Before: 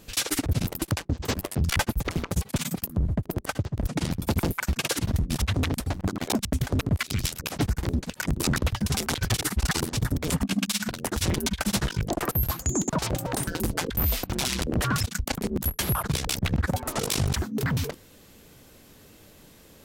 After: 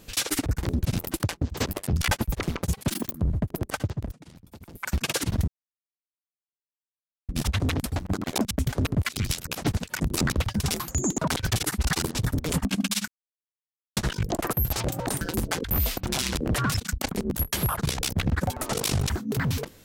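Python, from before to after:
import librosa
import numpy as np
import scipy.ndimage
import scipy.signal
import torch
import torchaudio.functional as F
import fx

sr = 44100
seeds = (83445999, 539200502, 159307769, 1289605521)

y = fx.edit(x, sr, fx.speed_span(start_s=2.58, length_s=0.28, speed=1.35),
    fx.fade_down_up(start_s=3.73, length_s=0.93, db=-21.0, fade_s=0.17),
    fx.insert_silence(at_s=5.23, length_s=1.81),
    fx.move(start_s=7.71, length_s=0.32, to_s=0.51),
    fx.silence(start_s=10.86, length_s=0.89),
    fx.move(start_s=12.51, length_s=0.48, to_s=9.06), tone=tone)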